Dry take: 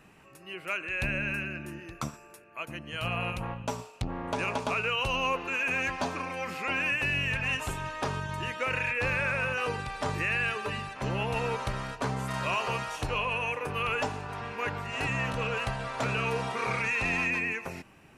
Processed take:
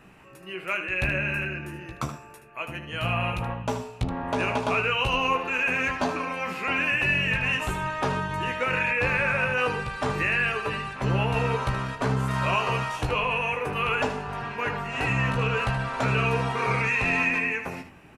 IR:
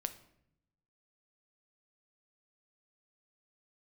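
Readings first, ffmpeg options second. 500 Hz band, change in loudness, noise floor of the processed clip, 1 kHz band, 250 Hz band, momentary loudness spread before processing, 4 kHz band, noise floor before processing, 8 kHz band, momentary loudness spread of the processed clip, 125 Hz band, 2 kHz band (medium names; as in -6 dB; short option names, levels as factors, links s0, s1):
+5.0 dB, +5.0 dB, -47 dBFS, +5.0 dB, +5.5 dB, 10 LU, +3.5 dB, -54 dBFS, +0.5 dB, 10 LU, +6.5 dB, +4.5 dB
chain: -filter_complex "[0:a]aecho=1:1:16|76:0.473|0.316,asplit=2[s0][s1];[1:a]atrim=start_sample=2205,asetrate=36603,aresample=44100,lowpass=4000[s2];[s1][s2]afir=irnorm=-1:irlink=0,volume=0.596[s3];[s0][s3]amix=inputs=2:normalize=0"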